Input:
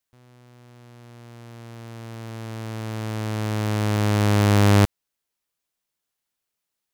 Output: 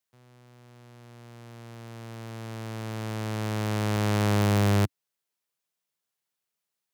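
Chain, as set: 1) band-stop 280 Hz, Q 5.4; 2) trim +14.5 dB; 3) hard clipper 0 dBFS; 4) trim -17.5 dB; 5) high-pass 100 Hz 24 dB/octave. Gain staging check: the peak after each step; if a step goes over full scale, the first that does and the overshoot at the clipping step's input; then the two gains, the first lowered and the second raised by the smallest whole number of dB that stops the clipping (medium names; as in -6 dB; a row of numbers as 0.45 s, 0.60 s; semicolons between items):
-8.5 dBFS, +6.0 dBFS, 0.0 dBFS, -17.5 dBFS, -11.0 dBFS; step 2, 6.0 dB; step 2 +8.5 dB, step 4 -11.5 dB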